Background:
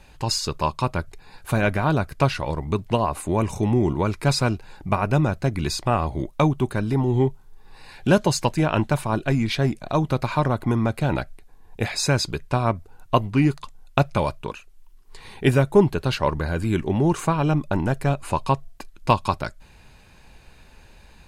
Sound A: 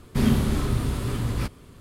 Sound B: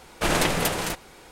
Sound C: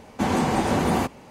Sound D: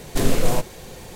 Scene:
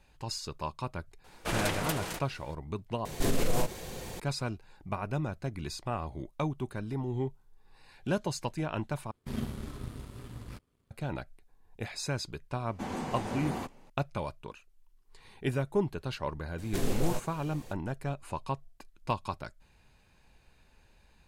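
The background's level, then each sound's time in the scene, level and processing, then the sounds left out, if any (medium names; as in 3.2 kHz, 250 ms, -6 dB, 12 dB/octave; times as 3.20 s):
background -13 dB
1.24 s: add B -9.5 dB
3.05 s: replace with D -2 dB + peak limiter -15.5 dBFS
9.11 s: replace with A -12.5 dB + power-law waveshaper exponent 1.4
12.60 s: add C -14 dB
16.58 s: add D -12 dB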